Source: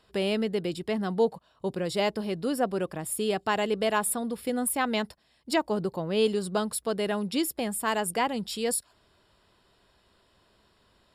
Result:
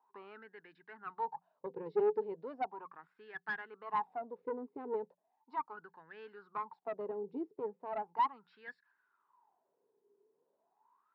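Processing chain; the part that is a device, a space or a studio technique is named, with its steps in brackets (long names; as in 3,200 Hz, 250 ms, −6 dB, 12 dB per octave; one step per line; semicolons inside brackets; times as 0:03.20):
mains-hum notches 60/120/180 Hz
0:01.09–0:02.54: flat-topped bell 2,900 Hz +10.5 dB 2.3 octaves
wah-wah guitar rig (LFO wah 0.37 Hz 420–1,700 Hz, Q 13; tube saturation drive 34 dB, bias 0.45; loudspeaker in its box 110–3,900 Hz, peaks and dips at 160 Hz +9 dB, 260 Hz +8 dB, 410 Hz +7 dB, 580 Hz −9 dB, 900 Hz +10 dB, 3,200 Hz −8 dB)
level +3 dB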